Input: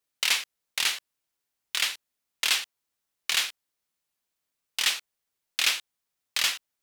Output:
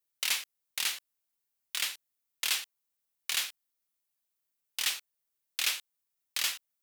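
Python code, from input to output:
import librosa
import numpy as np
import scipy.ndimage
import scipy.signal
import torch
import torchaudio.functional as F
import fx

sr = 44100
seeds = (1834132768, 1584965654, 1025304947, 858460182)

y = fx.high_shelf(x, sr, hz=9500.0, db=11.0)
y = y * librosa.db_to_amplitude(-7.5)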